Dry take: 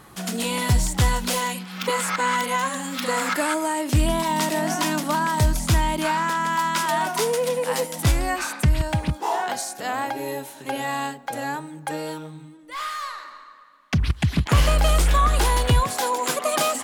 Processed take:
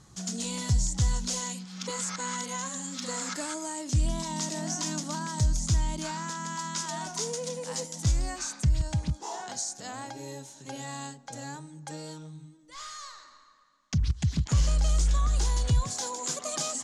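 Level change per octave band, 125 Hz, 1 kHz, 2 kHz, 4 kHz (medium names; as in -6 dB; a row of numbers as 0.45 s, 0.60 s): -5.0 dB, -14.5 dB, -15.0 dB, -8.0 dB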